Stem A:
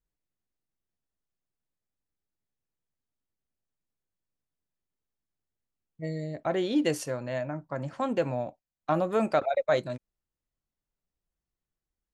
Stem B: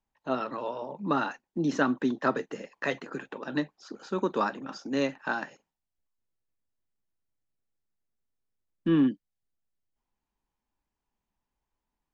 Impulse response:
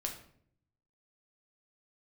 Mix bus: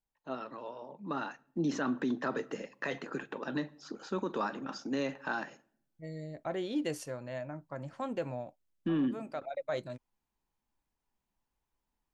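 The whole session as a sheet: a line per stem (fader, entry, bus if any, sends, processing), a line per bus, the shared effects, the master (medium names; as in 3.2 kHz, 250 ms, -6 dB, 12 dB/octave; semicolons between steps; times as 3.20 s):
-7.5 dB, 0.00 s, no send, auto duck -10 dB, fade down 0.50 s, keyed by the second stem
1.10 s -10.5 dB -> 1.80 s -2 dB, 0.00 s, send -16 dB, none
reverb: on, RT60 0.60 s, pre-delay 6 ms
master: peak limiter -24 dBFS, peak gain reduction 9 dB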